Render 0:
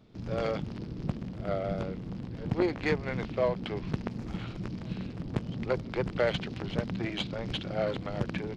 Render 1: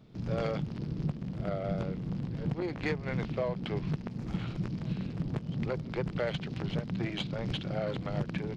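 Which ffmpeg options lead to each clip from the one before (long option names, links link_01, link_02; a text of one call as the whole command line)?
ffmpeg -i in.wav -af "equalizer=frequency=150:width=2.9:gain=8,alimiter=limit=-22dB:level=0:latency=1:release=272" out.wav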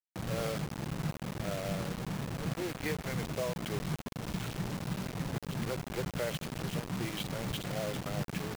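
ffmpeg -i in.wav -af "acrusher=bits=5:mix=0:aa=0.000001,volume=-3dB" out.wav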